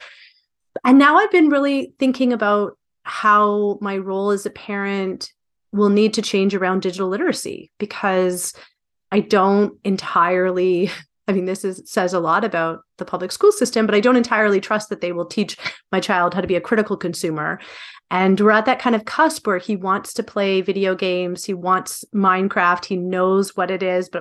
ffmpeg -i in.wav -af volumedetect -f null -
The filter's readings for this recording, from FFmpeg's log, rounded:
mean_volume: -18.8 dB
max_volume: -1.3 dB